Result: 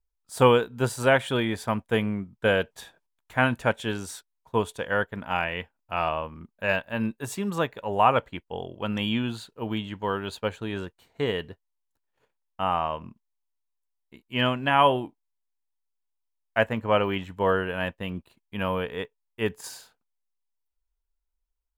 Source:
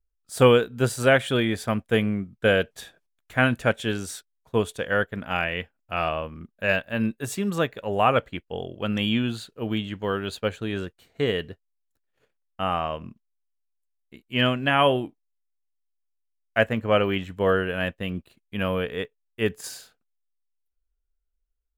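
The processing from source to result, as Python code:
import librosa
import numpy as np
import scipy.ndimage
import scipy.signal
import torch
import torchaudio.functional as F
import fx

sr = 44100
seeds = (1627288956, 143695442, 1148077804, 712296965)

y = fx.peak_eq(x, sr, hz=930.0, db=10.5, octaves=0.41)
y = F.gain(torch.from_numpy(y), -3.0).numpy()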